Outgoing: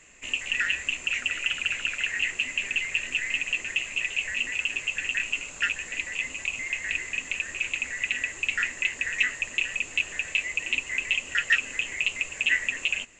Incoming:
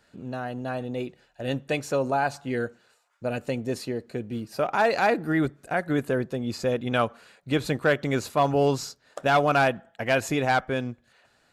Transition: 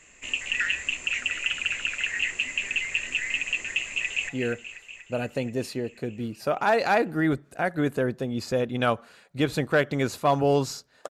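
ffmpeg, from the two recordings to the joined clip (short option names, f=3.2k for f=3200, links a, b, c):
-filter_complex "[0:a]apad=whole_dur=11.09,atrim=end=11.09,atrim=end=4.292[a];[1:a]atrim=start=2.408:end=9.21[b];[a][b]acrossfade=d=0.004:c1=hsin:c2=hsin,asplit=2[c][d];[d]afade=t=in:st=3.92:d=0.01,afade=t=out:st=4.29:d=0.01,aecho=0:1:240|480|720|960|1200|1440|1680|1920|2160|2400|2640|2880:0.281838|0.211379|0.158534|0.118901|0.0891754|0.0668815|0.0501612|0.0376209|0.0282157|0.0211617|0.0158713|0.0119035[e];[c][e]amix=inputs=2:normalize=0"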